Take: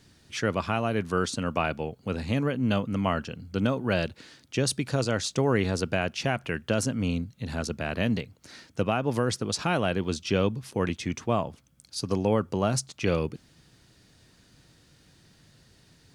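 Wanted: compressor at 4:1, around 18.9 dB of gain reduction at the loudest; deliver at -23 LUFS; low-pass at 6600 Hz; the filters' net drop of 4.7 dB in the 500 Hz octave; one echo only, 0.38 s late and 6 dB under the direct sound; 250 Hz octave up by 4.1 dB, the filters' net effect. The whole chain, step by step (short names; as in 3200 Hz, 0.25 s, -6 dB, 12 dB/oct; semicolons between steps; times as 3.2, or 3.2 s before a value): LPF 6600 Hz; bell 250 Hz +7 dB; bell 500 Hz -8 dB; compressor 4:1, threshold -42 dBFS; echo 0.38 s -6 dB; gain +19.5 dB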